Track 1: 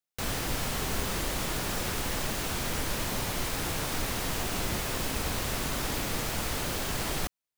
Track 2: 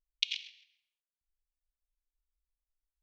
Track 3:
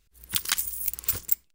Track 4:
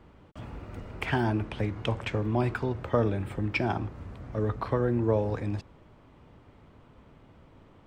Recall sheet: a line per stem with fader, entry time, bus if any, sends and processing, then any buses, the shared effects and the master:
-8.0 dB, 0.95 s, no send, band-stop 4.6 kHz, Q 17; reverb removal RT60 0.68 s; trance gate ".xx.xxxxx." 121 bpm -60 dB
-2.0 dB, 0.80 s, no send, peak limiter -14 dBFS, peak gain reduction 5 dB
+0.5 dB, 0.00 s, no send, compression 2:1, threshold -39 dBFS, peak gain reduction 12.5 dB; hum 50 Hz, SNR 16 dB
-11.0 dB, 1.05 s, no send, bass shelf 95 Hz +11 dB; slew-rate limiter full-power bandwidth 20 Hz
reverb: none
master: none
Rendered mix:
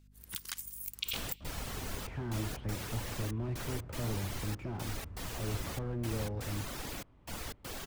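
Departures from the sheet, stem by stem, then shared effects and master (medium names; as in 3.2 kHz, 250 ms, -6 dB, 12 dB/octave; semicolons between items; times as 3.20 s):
stem 1: missing band-stop 4.6 kHz, Q 17; stem 3 +0.5 dB -> -5.5 dB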